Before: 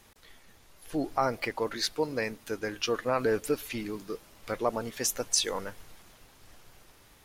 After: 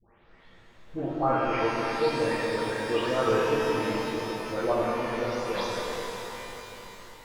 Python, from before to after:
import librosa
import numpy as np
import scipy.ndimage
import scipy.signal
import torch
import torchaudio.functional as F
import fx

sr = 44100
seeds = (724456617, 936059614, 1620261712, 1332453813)

y = fx.spec_delay(x, sr, highs='late', ms=394)
y = fx.air_absorb(y, sr, metres=350.0)
y = fx.rev_shimmer(y, sr, seeds[0], rt60_s=3.8, semitones=12, shimmer_db=-8, drr_db=-5.5)